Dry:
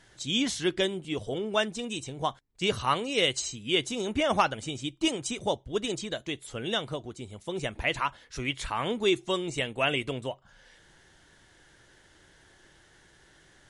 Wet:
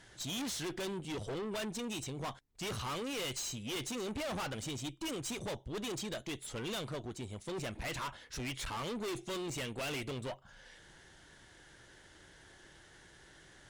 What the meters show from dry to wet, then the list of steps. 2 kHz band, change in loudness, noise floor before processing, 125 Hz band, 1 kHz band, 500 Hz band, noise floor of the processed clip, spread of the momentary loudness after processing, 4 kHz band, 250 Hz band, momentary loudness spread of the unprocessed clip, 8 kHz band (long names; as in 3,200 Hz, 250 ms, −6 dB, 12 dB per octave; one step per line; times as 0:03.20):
−11.0 dB, −10.0 dB, −60 dBFS, −5.0 dB, −12.0 dB, −10.5 dB, −60 dBFS, 20 LU, −11.0 dB, −8.5 dB, 9 LU, −4.5 dB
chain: tube saturation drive 38 dB, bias 0.4
level +1.5 dB